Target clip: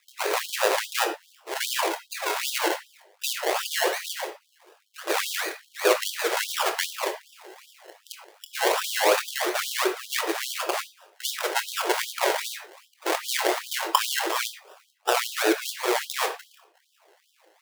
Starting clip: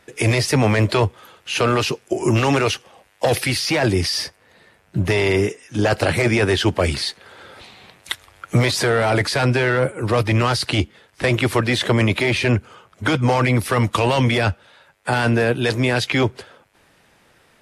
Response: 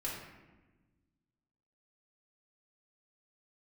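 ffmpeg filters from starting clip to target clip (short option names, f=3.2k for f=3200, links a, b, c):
-filter_complex "[0:a]afreqshift=-140,acrusher=samples=29:mix=1:aa=0.000001:lfo=1:lforange=17.4:lforate=2.7,asplit=2[a][b];[1:a]atrim=start_sample=2205,atrim=end_sample=4410,adelay=24[c];[b][c]afir=irnorm=-1:irlink=0,volume=-6.5dB[d];[a][d]amix=inputs=2:normalize=0,afftfilt=real='re*gte(b*sr/1024,310*pow(3100/310,0.5+0.5*sin(2*PI*2.5*pts/sr)))':imag='im*gte(b*sr/1024,310*pow(3100/310,0.5+0.5*sin(2*PI*2.5*pts/sr)))':win_size=1024:overlap=0.75"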